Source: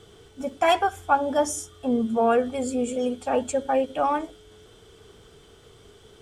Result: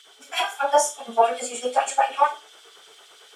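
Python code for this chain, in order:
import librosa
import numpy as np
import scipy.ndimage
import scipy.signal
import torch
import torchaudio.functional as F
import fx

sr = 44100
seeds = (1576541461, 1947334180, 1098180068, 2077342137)

p1 = fx.rider(x, sr, range_db=10, speed_s=2.0)
p2 = fx.filter_lfo_highpass(p1, sr, shape='sine', hz=4.8, low_hz=670.0, high_hz=4100.0, q=1.5)
p3 = p2 + fx.room_flutter(p2, sr, wall_m=8.2, rt60_s=0.49, dry=0)
p4 = fx.stretch_vocoder_free(p3, sr, factor=0.54)
y = F.gain(torch.from_numpy(p4), 8.5).numpy()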